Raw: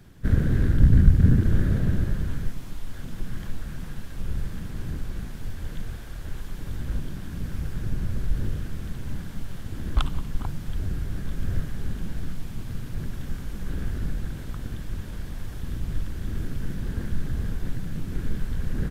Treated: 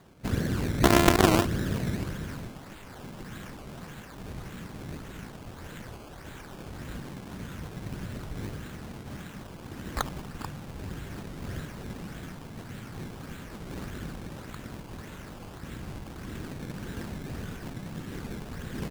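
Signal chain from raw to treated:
0:00.83–0:01.45: samples sorted by size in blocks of 128 samples
high-pass filter 310 Hz 6 dB per octave
sample-and-hold swept by an LFO 16×, swing 100% 1.7 Hz
wow of a warped record 78 rpm, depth 160 cents
level +2 dB

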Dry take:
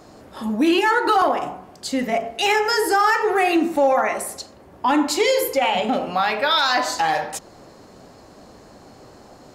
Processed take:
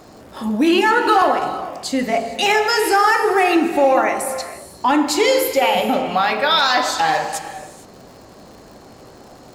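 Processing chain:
reverb whose tail is shaped and stops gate 490 ms flat, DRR 9.5 dB
surface crackle 130 per second −39 dBFS
level +2.5 dB

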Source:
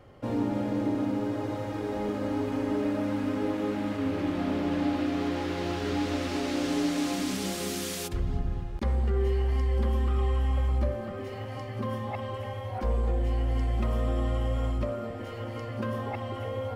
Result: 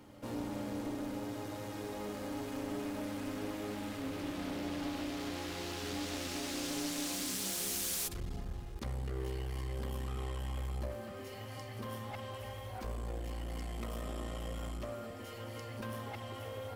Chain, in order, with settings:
first-order pre-emphasis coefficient 0.8
asymmetric clip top −47 dBFS
backwards echo 425 ms −17 dB
level +5 dB

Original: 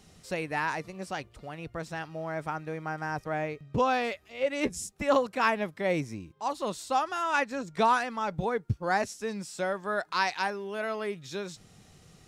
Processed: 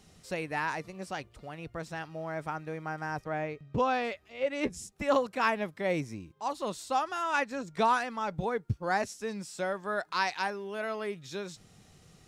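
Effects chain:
0:03.21–0:04.92: high-shelf EQ 6,400 Hz −7.5 dB
level −2 dB

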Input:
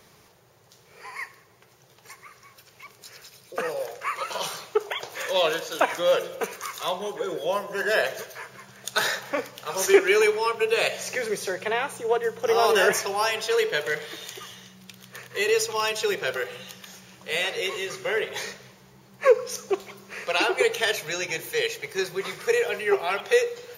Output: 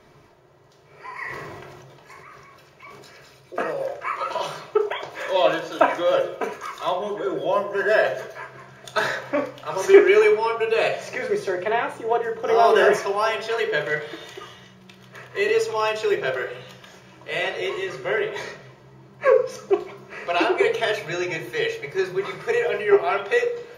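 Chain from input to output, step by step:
low-pass filter 3,200 Hz 6 dB per octave
high-shelf EQ 2,400 Hz −7 dB
mains-hum notches 60/120 Hz
convolution reverb RT60 0.30 s, pre-delay 3 ms, DRR 2 dB
0:01.13–0:03.63: level that may fall only so fast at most 24 dB per second
level +3 dB

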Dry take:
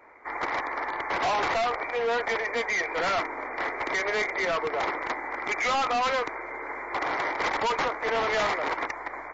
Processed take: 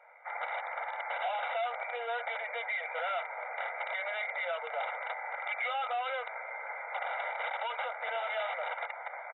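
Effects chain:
linear-phase brick-wall band-pass 460–3,900 Hz
downward compressor, threshold −28 dBFS, peak gain reduction 5.5 dB
comb filter 1.4 ms, depth 74%
level −6.5 dB

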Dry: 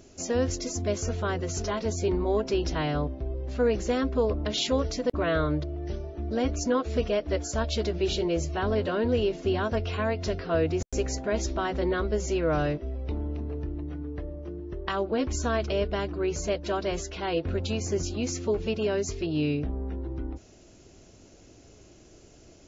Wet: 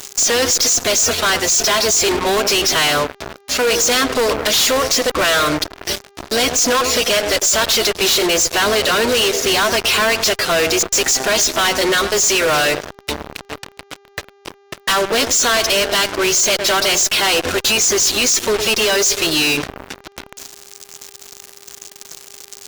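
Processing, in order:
reverb reduction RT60 0.53 s
first difference
feedback echo with a band-pass in the loop 104 ms, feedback 60%, band-pass 390 Hz, level −11 dB
fuzz pedal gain 61 dB, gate −59 dBFS
hum with harmonics 400 Hz, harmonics 17, −51 dBFS −8 dB per octave

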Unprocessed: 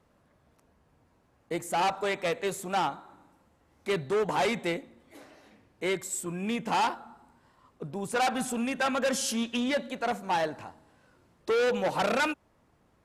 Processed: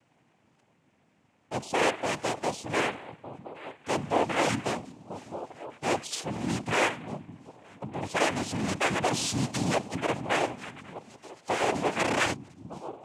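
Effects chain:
notch filter 470 Hz, Q 12
echo through a band-pass that steps 604 ms, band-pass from 180 Hz, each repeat 1.4 octaves, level −9 dB
cochlear-implant simulation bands 4
level +1 dB

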